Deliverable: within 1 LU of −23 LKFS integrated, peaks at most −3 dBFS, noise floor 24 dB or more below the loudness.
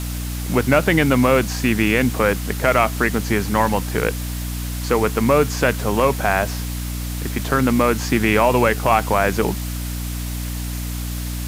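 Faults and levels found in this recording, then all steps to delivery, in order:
mains hum 60 Hz; hum harmonics up to 300 Hz; level of the hum −24 dBFS; background noise floor −26 dBFS; target noise floor −44 dBFS; integrated loudness −19.5 LKFS; sample peak −2.0 dBFS; target loudness −23.0 LKFS
→ hum removal 60 Hz, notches 5
broadband denoise 18 dB, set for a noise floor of −26 dBFS
level −3.5 dB

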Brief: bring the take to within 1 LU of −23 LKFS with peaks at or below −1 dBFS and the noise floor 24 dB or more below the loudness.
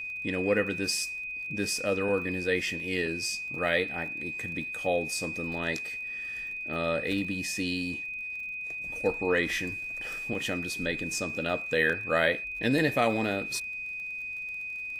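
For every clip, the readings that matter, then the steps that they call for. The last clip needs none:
crackle rate 34 per second; interfering tone 2,500 Hz; level of the tone −34 dBFS; integrated loudness −29.5 LKFS; sample peak −10.5 dBFS; target loudness −23.0 LKFS
→ click removal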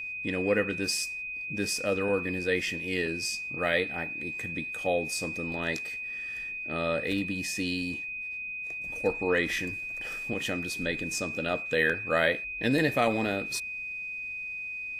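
crackle rate 0.067 per second; interfering tone 2,500 Hz; level of the tone −34 dBFS
→ notch filter 2,500 Hz, Q 30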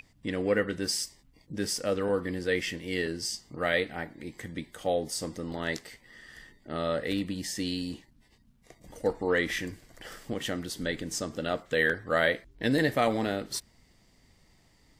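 interfering tone none found; integrated loudness −30.5 LKFS; sample peak −10.5 dBFS; target loudness −23.0 LKFS
→ level +7.5 dB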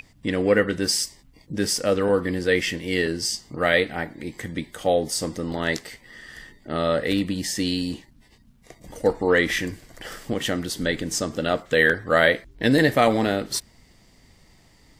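integrated loudness −23.0 LKFS; sample peak −3.0 dBFS; background noise floor −56 dBFS

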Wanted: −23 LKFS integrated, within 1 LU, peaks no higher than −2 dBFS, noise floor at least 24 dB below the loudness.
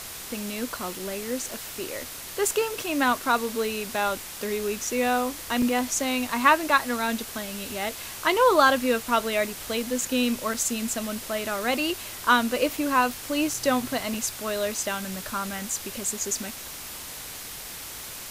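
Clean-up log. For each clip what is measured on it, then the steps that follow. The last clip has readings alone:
number of dropouts 8; longest dropout 2.5 ms; background noise floor −39 dBFS; target noise floor −50 dBFS; integrated loudness −26.0 LKFS; sample peak −4.0 dBFS; target loudness −23.0 LKFS
→ repair the gap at 0:00.99/0:01.51/0:04.87/0:05.62/0:10.54/0:12.77/0:13.54/0:14.14, 2.5 ms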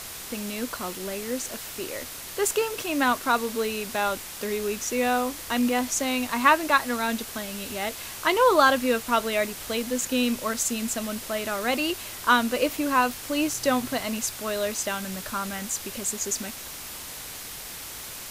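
number of dropouts 0; background noise floor −39 dBFS; target noise floor −50 dBFS
→ broadband denoise 11 dB, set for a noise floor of −39 dBFS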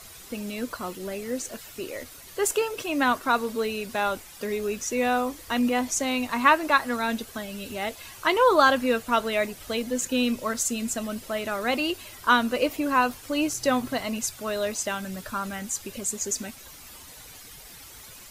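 background noise floor −46 dBFS; target noise floor −50 dBFS
→ broadband denoise 6 dB, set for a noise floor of −46 dBFS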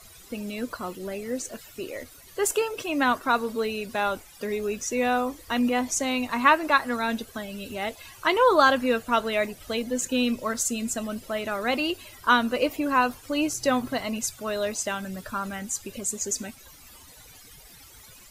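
background noise floor −50 dBFS; integrated loudness −26.0 LKFS; sample peak −4.0 dBFS; target loudness −23.0 LKFS
→ level +3 dB
brickwall limiter −2 dBFS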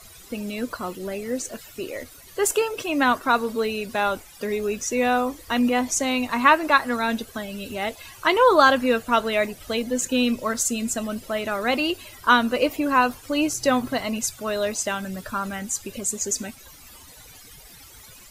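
integrated loudness −23.0 LKFS; sample peak −2.0 dBFS; background noise floor −47 dBFS

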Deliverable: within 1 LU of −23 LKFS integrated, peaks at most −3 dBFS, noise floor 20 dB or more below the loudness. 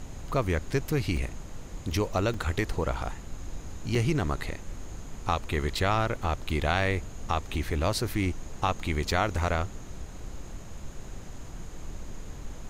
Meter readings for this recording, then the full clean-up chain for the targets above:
number of dropouts 5; longest dropout 3.2 ms; background noise floor −42 dBFS; target noise floor −50 dBFS; integrated loudness −29.5 LKFS; sample peak −11.5 dBFS; target loudness −23.0 LKFS
→ repair the gap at 0:01.17/0:02.34/0:03.95/0:05.75/0:09.11, 3.2 ms
noise reduction from a noise print 8 dB
level +6.5 dB

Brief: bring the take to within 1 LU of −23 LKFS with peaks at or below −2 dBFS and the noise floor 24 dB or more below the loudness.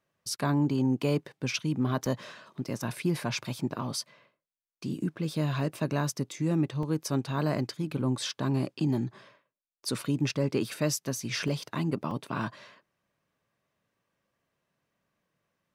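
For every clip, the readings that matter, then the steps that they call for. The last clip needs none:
number of dropouts 4; longest dropout 2.3 ms; integrated loudness −31.0 LKFS; sample peak −15.5 dBFS; target loudness −23.0 LKFS
→ repair the gap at 0:02.06/0:06.83/0:11.48/0:12.11, 2.3 ms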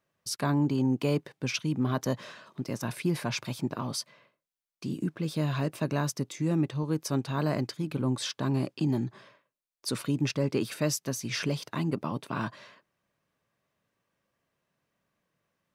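number of dropouts 0; integrated loudness −31.0 LKFS; sample peak −15.5 dBFS; target loudness −23.0 LKFS
→ level +8 dB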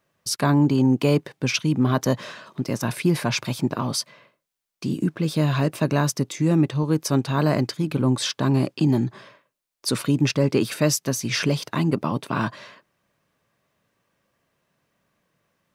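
integrated loudness −23.0 LKFS; sample peak −7.5 dBFS; background noise floor −76 dBFS

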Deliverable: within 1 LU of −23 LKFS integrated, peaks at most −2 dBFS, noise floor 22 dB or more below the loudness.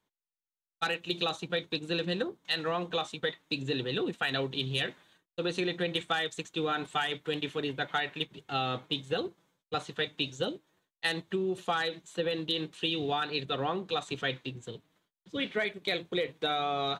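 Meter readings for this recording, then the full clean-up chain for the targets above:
integrated loudness −32.5 LKFS; sample peak −17.0 dBFS; target loudness −23.0 LKFS
→ level +9.5 dB

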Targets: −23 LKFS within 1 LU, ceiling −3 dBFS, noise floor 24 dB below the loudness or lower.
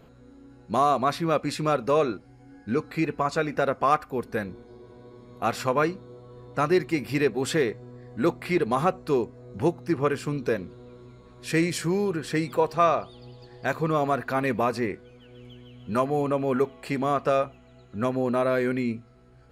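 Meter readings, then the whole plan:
integrated loudness −26.0 LKFS; sample peak −9.5 dBFS; target loudness −23.0 LKFS
→ level +3 dB

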